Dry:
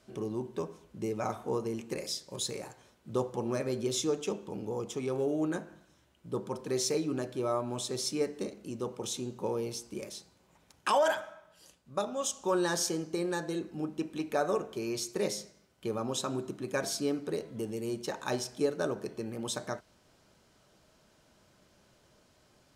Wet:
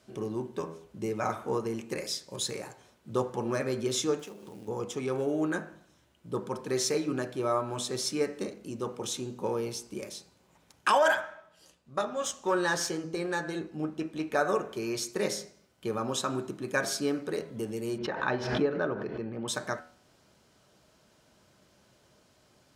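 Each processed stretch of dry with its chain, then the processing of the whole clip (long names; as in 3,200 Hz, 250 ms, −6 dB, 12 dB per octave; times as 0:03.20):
0:04.19–0:04.68: variable-slope delta modulation 64 kbit/s + downward compressor, threshold −43 dBFS + floating-point word with a short mantissa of 2 bits
0:11.21–0:14.35: gain on one half-wave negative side −3 dB + high-shelf EQ 9,800 Hz −7.5 dB + double-tracking delay 13 ms −11 dB
0:17.98–0:19.48: high-frequency loss of the air 320 metres + background raised ahead of every attack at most 57 dB per second
whole clip: high-pass filter 52 Hz; hum removal 81.31 Hz, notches 33; dynamic equaliser 1,600 Hz, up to +7 dB, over −52 dBFS, Q 1.3; level +1.5 dB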